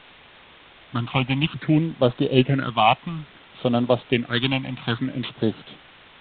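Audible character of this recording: a buzz of ramps at a fixed pitch in blocks of 8 samples; phasing stages 6, 0.59 Hz, lowest notch 400–2200 Hz; a quantiser's noise floor 8-bit, dither triangular; µ-law

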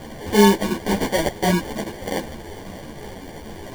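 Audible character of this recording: a quantiser's noise floor 6-bit, dither triangular; phasing stages 6, 2.9 Hz, lowest notch 440–2000 Hz; aliases and images of a low sample rate 1300 Hz, jitter 0%; a shimmering, thickened sound

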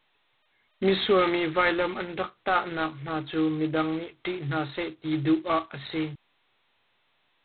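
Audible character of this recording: G.726

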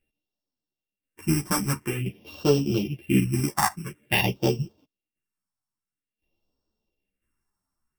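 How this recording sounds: a buzz of ramps at a fixed pitch in blocks of 16 samples; phasing stages 4, 0.49 Hz, lowest notch 460–2100 Hz; tremolo saw down 0.97 Hz, depth 60%; a shimmering, thickened sound

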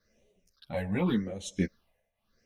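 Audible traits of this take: phasing stages 6, 0.86 Hz, lowest notch 330–1400 Hz; tremolo triangle 1.3 Hz, depth 85%; a shimmering, thickened sound

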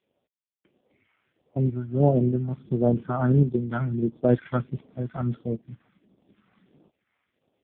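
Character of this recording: random-step tremolo; phasing stages 2, 1.5 Hz, lowest notch 400–1800 Hz; AMR-NB

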